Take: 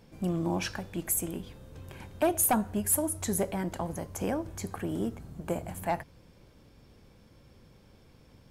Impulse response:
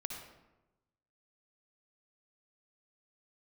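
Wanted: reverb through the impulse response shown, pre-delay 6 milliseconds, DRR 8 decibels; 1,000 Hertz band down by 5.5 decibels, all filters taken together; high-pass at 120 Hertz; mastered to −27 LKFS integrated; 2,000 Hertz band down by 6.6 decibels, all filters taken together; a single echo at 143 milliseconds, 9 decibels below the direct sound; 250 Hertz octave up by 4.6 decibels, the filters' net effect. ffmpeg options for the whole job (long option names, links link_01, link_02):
-filter_complex "[0:a]highpass=120,equalizer=frequency=250:width_type=o:gain=7.5,equalizer=frequency=1000:width_type=o:gain=-8,equalizer=frequency=2000:width_type=o:gain=-6,aecho=1:1:143:0.355,asplit=2[link_01][link_02];[1:a]atrim=start_sample=2205,adelay=6[link_03];[link_02][link_03]afir=irnorm=-1:irlink=0,volume=-7.5dB[link_04];[link_01][link_04]amix=inputs=2:normalize=0,volume=1dB"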